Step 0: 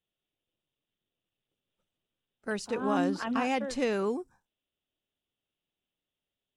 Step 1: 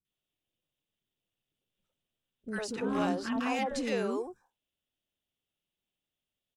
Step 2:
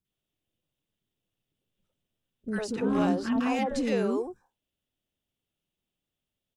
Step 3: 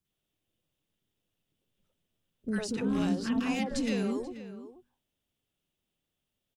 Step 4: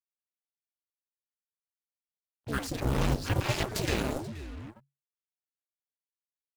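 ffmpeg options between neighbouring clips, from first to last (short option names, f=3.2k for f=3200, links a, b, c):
-filter_complex "[0:a]asoftclip=type=hard:threshold=-20.5dB,acrossover=split=380|1200[a][b][c];[c]adelay=50[d];[b]adelay=100[e];[a][e][d]amix=inputs=3:normalize=0"
-af "lowshelf=f=500:g=7.5"
-filter_complex "[0:a]acrossover=split=240|2200[a][b][c];[a]bandreject=f=60.88:t=h:w=4,bandreject=f=121.76:t=h:w=4,bandreject=f=182.64:t=h:w=4,bandreject=f=243.52:t=h:w=4[d];[b]acompressor=threshold=-38dB:ratio=6[e];[d][e][c]amix=inputs=3:normalize=0,asplit=2[f][g];[g]adelay=484,volume=-13dB,highshelf=f=4k:g=-10.9[h];[f][h]amix=inputs=2:normalize=0,volume=2dB"
-af "acrusher=bits=7:mix=0:aa=0.5,afreqshift=-140,aeval=exprs='0.119*(cos(1*acos(clip(val(0)/0.119,-1,1)))-cos(1*PI/2))+0.0422*(cos(7*acos(clip(val(0)/0.119,-1,1)))-cos(7*PI/2))':c=same"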